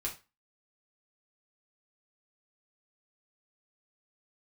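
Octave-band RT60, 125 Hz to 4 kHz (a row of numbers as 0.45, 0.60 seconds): 0.30, 0.25, 0.25, 0.30, 0.30, 0.25 seconds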